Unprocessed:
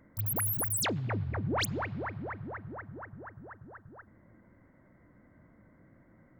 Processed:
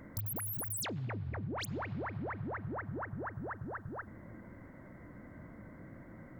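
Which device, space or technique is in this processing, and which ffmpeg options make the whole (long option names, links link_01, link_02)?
serial compression, leveller first: -af "acompressor=threshold=-34dB:ratio=6,acompressor=threshold=-46dB:ratio=6,volume=9dB"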